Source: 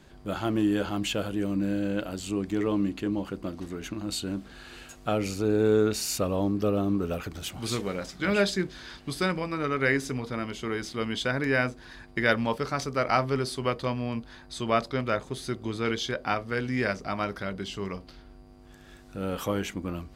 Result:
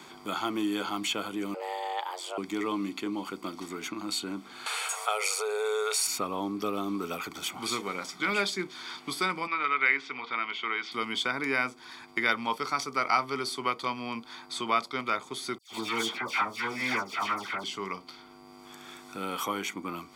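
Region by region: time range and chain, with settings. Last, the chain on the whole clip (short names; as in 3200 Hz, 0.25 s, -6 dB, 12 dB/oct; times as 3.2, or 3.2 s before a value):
1.54–2.38 tone controls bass -10 dB, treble -7 dB + notches 60/120/180 Hz + frequency shift +270 Hz
4.66–6.07 brick-wall FIR high-pass 410 Hz + bell 9100 Hz +11 dB 0.48 oct + fast leveller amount 50%
9.47–10.92 LPF 3100 Hz 24 dB/oct + tilt +4.5 dB/oct
15.58–17.64 minimum comb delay 8.9 ms + dispersion lows, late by 0.123 s, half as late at 2100 Hz
whole clip: HPF 400 Hz 12 dB/oct; comb 0.9 ms, depth 67%; three-band squash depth 40%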